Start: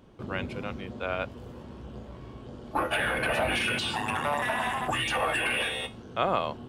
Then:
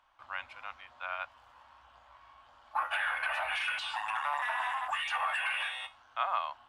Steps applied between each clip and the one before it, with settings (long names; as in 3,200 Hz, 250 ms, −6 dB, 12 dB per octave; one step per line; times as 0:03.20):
inverse Chebyshev high-pass filter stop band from 460 Hz, stop band 40 dB
spectral tilt −4 dB per octave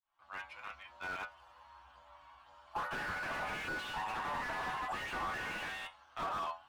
fade in at the beginning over 0.60 s
stiff-string resonator 69 Hz, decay 0.29 s, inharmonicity 0.002
slew-rate limiting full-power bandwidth 8.6 Hz
level +7 dB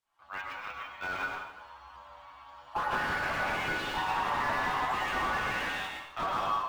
dense smooth reverb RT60 0.86 s, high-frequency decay 0.85×, pre-delay 90 ms, DRR 1 dB
linearly interpolated sample-rate reduction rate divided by 2×
level +5.5 dB